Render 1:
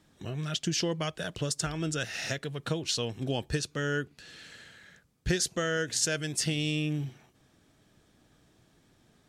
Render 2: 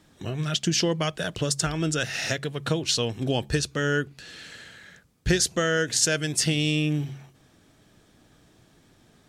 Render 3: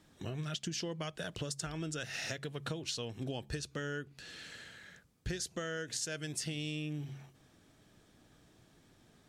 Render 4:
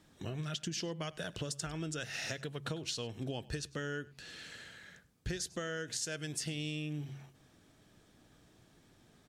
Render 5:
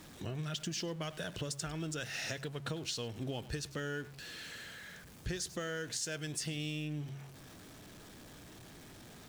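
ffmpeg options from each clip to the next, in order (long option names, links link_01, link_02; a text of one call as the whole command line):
ffmpeg -i in.wav -af "bandreject=frequency=69.06:width_type=h:width=4,bandreject=frequency=138.12:width_type=h:width=4,bandreject=frequency=207.18:width_type=h:width=4,volume=6dB" out.wav
ffmpeg -i in.wav -af "acompressor=threshold=-31dB:ratio=4,volume=-6dB" out.wav
ffmpeg -i in.wav -af "aecho=1:1:100:0.0841" out.wav
ffmpeg -i in.wav -af "aeval=exprs='val(0)+0.5*0.00376*sgn(val(0))':channel_layout=same,volume=-1dB" out.wav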